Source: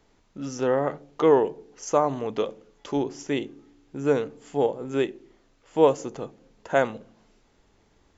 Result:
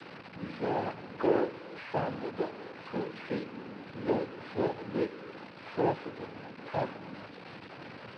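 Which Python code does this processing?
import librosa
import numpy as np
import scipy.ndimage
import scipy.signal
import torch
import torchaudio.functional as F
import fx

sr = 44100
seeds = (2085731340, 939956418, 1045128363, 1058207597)

y = fx.delta_mod(x, sr, bps=16000, step_db=-30.5)
y = fx.noise_vocoder(y, sr, seeds[0], bands=8)
y = F.gain(torch.from_numpy(y), -7.0).numpy()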